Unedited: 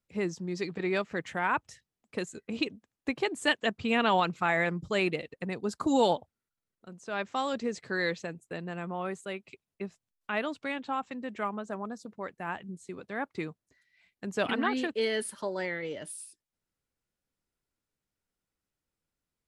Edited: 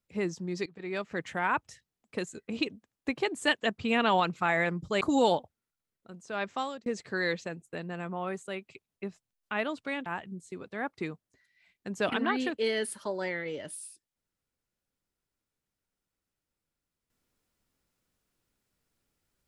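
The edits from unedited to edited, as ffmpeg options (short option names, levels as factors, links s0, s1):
-filter_complex "[0:a]asplit=5[s0][s1][s2][s3][s4];[s0]atrim=end=0.66,asetpts=PTS-STARTPTS,afade=t=out:st=0.656:d=0.004:c=hsin:silence=0.0891251[s5];[s1]atrim=start=0.66:end=5.012,asetpts=PTS-STARTPTS,afade=t=in:d=0.55:silence=0.0891251[s6];[s2]atrim=start=5.788:end=7.64,asetpts=PTS-STARTPTS,afade=t=out:st=1.542:d=0.31[s7];[s3]atrim=start=7.64:end=10.842,asetpts=PTS-STARTPTS,afade=t=in:d=0.004:c=hsin[s8];[s4]atrim=start=12.428[s9];[s5][s6]concat=n=2:v=0:a=1[s10];[s7][s8]concat=n=2:v=0:a=1[s11];[s10][s11]acrossfade=d=0.004:c1=hsin:c2=hsin[s12];[s12][s9]acrossfade=d=0.004:c1=hsin:c2=hsin"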